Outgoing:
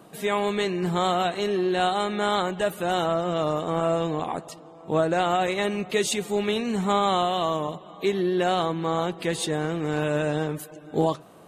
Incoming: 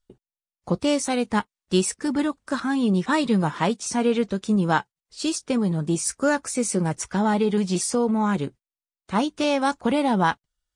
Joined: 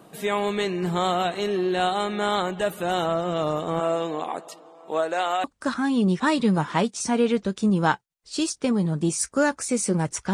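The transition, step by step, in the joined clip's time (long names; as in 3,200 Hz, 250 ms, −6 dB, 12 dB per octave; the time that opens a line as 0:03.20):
outgoing
0:03.79–0:05.44: high-pass filter 220 Hz → 610 Hz
0:05.44: continue with incoming from 0:02.30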